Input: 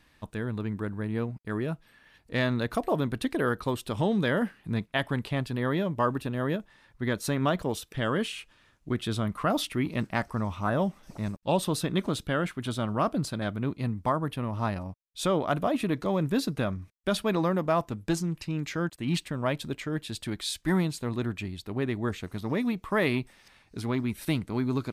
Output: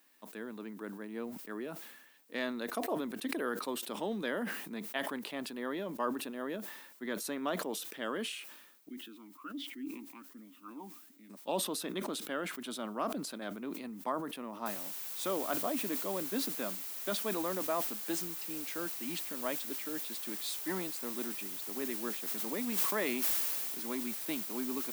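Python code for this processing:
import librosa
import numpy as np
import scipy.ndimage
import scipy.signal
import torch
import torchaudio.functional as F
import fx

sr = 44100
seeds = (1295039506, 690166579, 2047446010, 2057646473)

y = fx.vowel_sweep(x, sr, vowels='i-u', hz=1.3, at=(8.9, 11.3))
y = fx.noise_floor_step(y, sr, seeds[0], at_s=14.66, before_db=-67, after_db=-40, tilt_db=0.0)
y = fx.sustainer(y, sr, db_per_s=20.0, at=(22.19, 23.86))
y = scipy.signal.sosfilt(scipy.signal.butter(6, 220.0, 'highpass', fs=sr, output='sos'), y)
y = fx.high_shelf(y, sr, hz=12000.0, db=11.0)
y = fx.sustainer(y, sr, db_per_s=51.0)
y = y * librosa.db_to_amplitude(-8.5)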